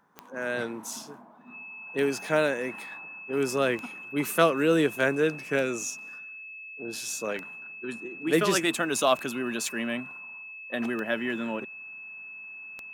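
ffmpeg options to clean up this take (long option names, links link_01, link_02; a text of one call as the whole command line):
ffmpeg -i in.wav -af "adeclick=threshold=4,bandreject=frequency=2600:width=30" out.wav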